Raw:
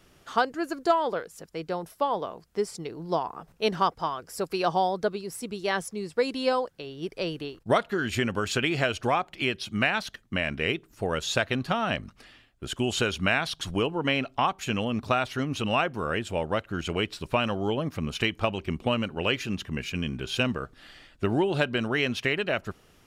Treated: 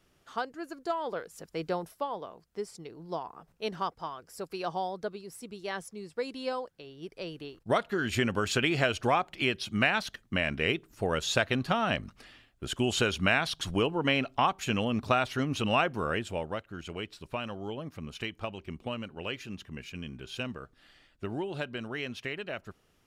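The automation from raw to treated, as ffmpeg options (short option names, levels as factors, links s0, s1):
-af "volume=2.51,afade=t=in:st=0.94:d=0.72:silence=0.316228,afade=t=out:st=1.66:d=0.41:silence=0.354813,afade=t=in:st=7.3:d=0.9:silence=0.421697,afade=t=out:st=16.01:d=0.64:silence=0.354813"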